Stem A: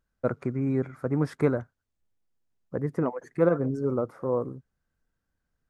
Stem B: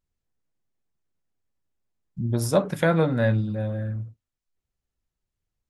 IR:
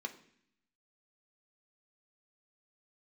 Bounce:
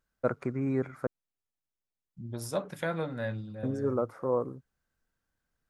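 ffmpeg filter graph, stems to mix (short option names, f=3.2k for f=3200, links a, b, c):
-filter_complex "[0:a]volume=1dB,asplit=3[a][b][c];[a]atrim=end=1.07,asetpts=PTS-STARTPTS,afade=t=out:st=1.066:d=0.004:c=hsin[d];[b]atrim=start=1.07:end=3.63,asetpts=PTS-STARTPTS,volume=0[e];[c]atrim=start=3.63,asetpts=PTS-STARTPTS,afade=t=in:d=0.004:c=hsin[f];[d][e][f]concat=n=3:v=0:a=1[g];[1:a]volume=-9dB[h];[g][h]amix=inputs=2:normalize=0,lowshelf=f=400:g=-6"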